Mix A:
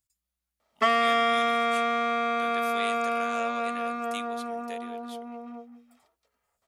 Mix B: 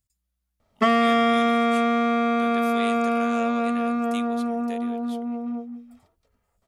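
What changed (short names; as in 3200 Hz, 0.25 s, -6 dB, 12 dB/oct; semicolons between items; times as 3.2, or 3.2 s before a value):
background: remove HPF 420 Hz 6 dB/oct; master: add low shelf 300 Hz +11 dB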